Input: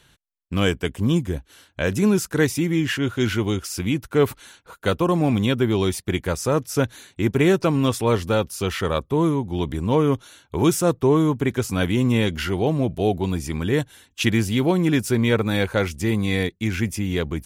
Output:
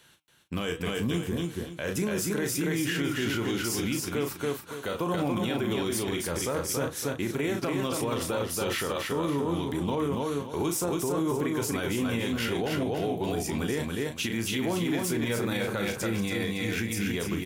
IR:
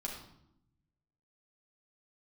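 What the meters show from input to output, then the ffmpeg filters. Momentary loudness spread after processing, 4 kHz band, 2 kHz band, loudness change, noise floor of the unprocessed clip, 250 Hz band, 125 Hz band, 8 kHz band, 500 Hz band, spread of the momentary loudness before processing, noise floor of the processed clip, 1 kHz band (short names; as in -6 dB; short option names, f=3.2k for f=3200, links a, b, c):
3 LU, -4.5 dB, -5.5 dB, -7.5 dB, -62 dBFS, -8.0 dB, -10.5 dB, -1.0 dB, -7.5 dB, 6 LU, -42 dBFS, -6.0 dB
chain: -filter_complex "[0:a]highpass=f=210:p=1,highshelf=f=12k:g=7.5,asplit=2[a][b];[b]adelay=35,volume=-8dB[c];[a][c]amix=inputs=2:normalize=0,acompressor=threshold=-20dB:ratio=6,flanger=delay=3.5:depth=9.8:regen=81:speed=0.7:shape=triangular,asplit=2[d][e];[e]aecho=0:1:280|560|840|1120:0.631|0.183|0.0531|0.0154[f];[d][f]amix=inputs=2:normalize=0,alimiter=limit=-22.5dB:level=0:latency=1:release=32,volume=2.5dB"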